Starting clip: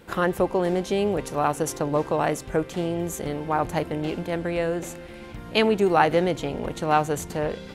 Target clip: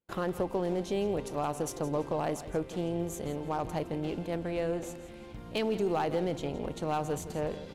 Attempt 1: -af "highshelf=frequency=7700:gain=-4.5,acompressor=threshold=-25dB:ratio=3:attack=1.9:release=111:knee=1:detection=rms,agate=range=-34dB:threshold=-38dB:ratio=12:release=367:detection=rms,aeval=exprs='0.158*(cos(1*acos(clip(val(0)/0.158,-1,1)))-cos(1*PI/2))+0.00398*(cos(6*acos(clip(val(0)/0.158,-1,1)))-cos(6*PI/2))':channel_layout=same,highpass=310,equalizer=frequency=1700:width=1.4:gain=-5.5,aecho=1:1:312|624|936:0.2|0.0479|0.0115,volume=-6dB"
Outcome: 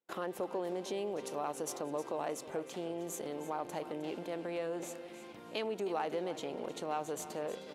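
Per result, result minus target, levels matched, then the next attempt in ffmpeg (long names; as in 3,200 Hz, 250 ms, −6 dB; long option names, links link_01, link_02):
echo 146 ms late; downward compressor: peak gain reduction +5 dB; 250 Hz band −2.0 dB
-af "highshelf=frequency=7700:gain=-4.5,acompressor=threshold=-25dB:ratio=3:attack=1.9:release=111:knee=1:detection=rms,agate=range=-34dB:threshold=-38dB:ratio=12:release=367:detection=rms,aeval=exprs='0.158*(cos(1*acos(clip(val(0)/0.158,-1,1)))-cos(1*PI/2))+0.00398*(cos(6*acos(clip(val(0)/0.158,-1,1)))-cos(6*PI/2))':channel_layout=same,highpass=310,equalizer=frequency=1700:width=1.4:gain=-5.5,aecho=1:1:166|332|498:0.2|0.0479|0.0115,volume=-6dB"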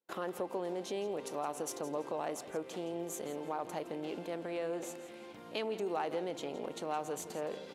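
downward compressor: peak gain reduction +5 dB; 250 Hz band −2.0 dB
-af "highshelf=frequency=7700:gain=-4.5,acompressor=threshold=-17.5dB:ratio=3:attack=1.9:release=111:knee=1:detection=rms,agate=range=-34dB:threshold=-38dB:ratio=12:release=367:detection=rms,aeval=exprs='0.158*(cos(1*acos(clip(val(0)/0.158,-1,1)))-cos(1*PI/2))+0.00398*(cos(6*acos(clip(val(0)/0.158,-1,1)))-cos(6*PI/2))':channel_layout=same,highpass=310,equalizer=frequency=1700:width=1.4:gain=-5.5,aecho=1:1:166|332|498:0.2|0.0479|0.0115,volume=-6dB"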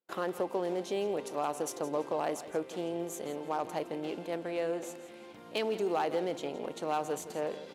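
250 Hz band −2.5 dB
-af "highshelf=frequency=7700:gain=-4.5,acompressor=threshold=-17.5dB:ratio=3:attack=1.9:release=111:knee=1:detection=rms,agate=range=-34dB:threshold=-38dB:ratio=12:release=367:detection=rms,aeval=exprs='0.158*(cos(1*acos(clip(val(0)/0.158,-1,1)))-cos(1*PI/2))+0.00398*(cos(6*acos(clip(val(0)/0.158,-1,1)))-cos(6*PI/2))':channel_layout=same,equalizer=frequency=1700:width=1.4:gain=-5.5,aecho=1:1:166|332|498:0.2|0.0479|0.0115,volume=-6dB"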